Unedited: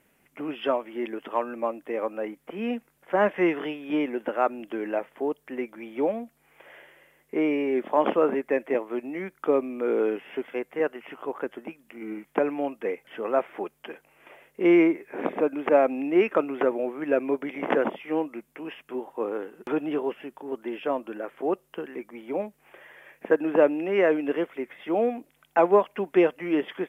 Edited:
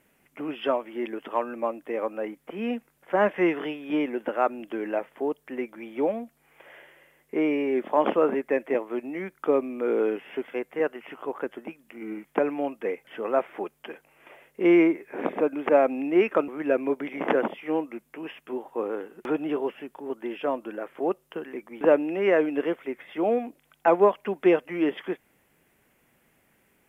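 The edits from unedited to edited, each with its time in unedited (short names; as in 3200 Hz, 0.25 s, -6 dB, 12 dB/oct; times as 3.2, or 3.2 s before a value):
16.48–16.9 cut
22.23–23.52 cut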